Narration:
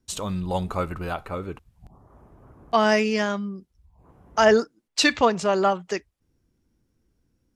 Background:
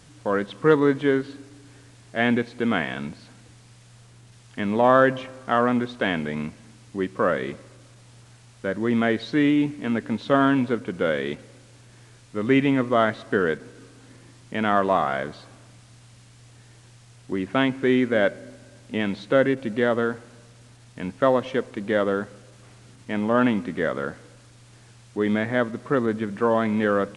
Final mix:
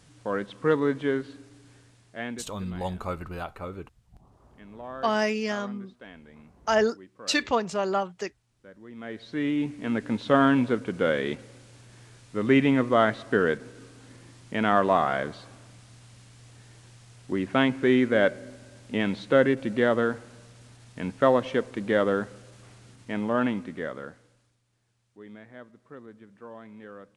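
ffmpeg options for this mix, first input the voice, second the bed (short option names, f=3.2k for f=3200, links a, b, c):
-filter_complex "[0:a]adelay=2300,volume=-5.5dB[a];[1:a]volume=16dB,afade=t=out:st=1.72:d=0.78:silence=0.141254,afade=t=in:st=8.95:d=1.24:silence=0.0841395,afade=t=out:st=22.52:d=2.09:silence=0.0794328[b];[a][b]amix=inputs=2:normalize=0"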